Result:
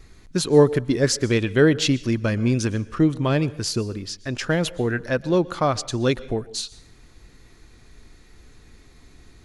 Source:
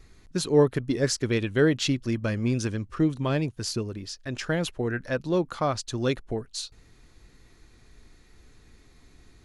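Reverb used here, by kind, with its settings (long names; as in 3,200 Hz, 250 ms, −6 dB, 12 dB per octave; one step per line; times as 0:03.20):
dense smooth reverb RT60 0.55 s, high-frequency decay 1×, pre-delay 105 ms, DRR 19.5 dB
level +5 dB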